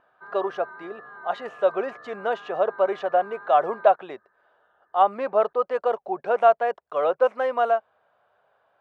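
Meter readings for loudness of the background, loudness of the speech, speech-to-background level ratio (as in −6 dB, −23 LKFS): −43.0 LKFS, −24.0 LKFS, 19.0 dB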